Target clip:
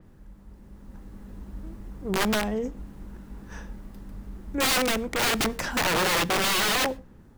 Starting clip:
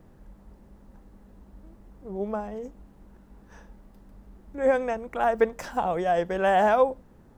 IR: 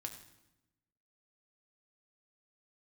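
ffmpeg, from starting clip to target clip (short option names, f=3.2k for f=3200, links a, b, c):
-filter_complex "[0:a]equalizer=f=660:w=1:g=-6.5,dynaudnorm=f=260:g=7:m=9dB,aeval=exprs='(mod(9.44*val(0)+1,2)-1)/9.44':c=same,asplit=2[a][b];[1:a]atrim=start_sample=2205,atrim=end_sample=6174[c];[b][c]afir=irnorm=-1:irlink=0,volume=-10dB[d];[a][d]amix=inputs=2:normalize=0,adynamicequalizer=threshold=0.00282:dfrequency=5200:dqfactor=0.7:tfrequency=5200:tqfactor=0.7:attack=5:release=100:ratio=0.375:range=2:mode=cutabove:tftype=highshelf"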